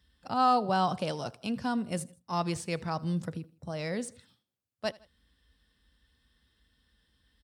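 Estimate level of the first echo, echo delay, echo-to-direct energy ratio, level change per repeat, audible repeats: −23.5 dB, 80 ms, −22.5 dB, −5.5 dB, 2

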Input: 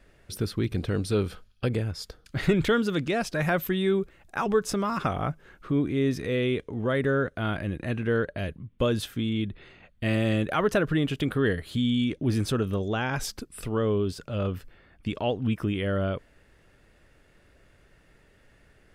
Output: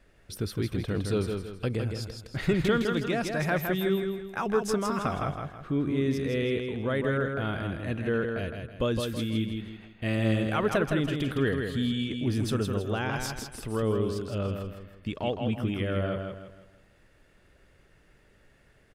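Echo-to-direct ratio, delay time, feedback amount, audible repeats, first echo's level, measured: −4.5 dB, 162 ms, 37%, 4, −5.0 dB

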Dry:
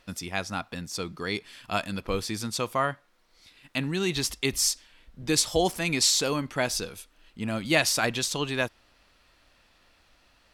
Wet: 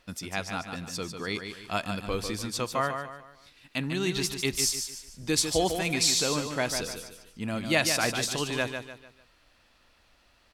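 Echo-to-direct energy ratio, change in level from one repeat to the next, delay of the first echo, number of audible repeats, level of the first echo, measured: −6.5 dB, −8.5 dB, 148 ms, 4, −7.0 dB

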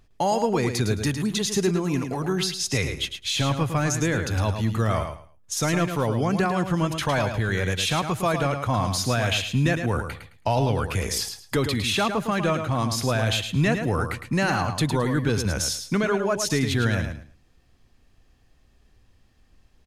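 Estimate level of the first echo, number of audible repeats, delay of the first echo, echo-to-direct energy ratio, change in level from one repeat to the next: −7.5 dB, 3, 108 ms, −7.5 dB, −13.0 dB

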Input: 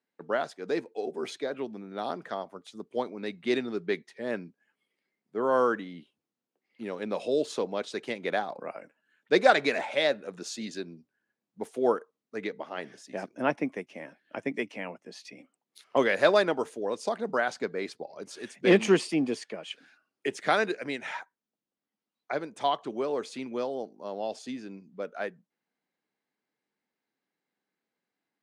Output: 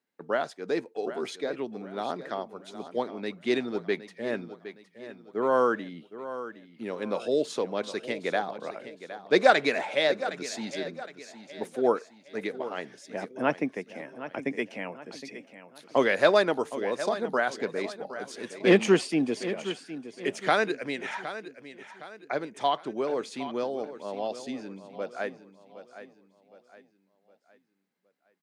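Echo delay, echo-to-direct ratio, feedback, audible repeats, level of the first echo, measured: 764 ms, −12.0 dB, 40%, 3, −13.0 dB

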